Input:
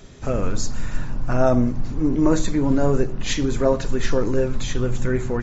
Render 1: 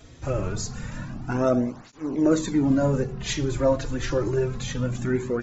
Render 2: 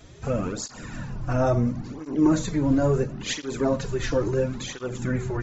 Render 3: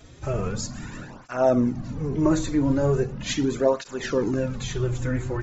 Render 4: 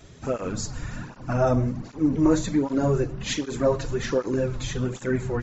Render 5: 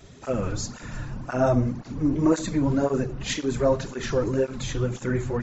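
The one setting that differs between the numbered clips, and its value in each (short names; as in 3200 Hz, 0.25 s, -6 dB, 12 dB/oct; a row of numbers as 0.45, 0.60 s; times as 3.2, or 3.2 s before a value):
tape flanging out of phase, nulls at: 0.26, 0.73, 0.39, 1.3, 1.9 Hz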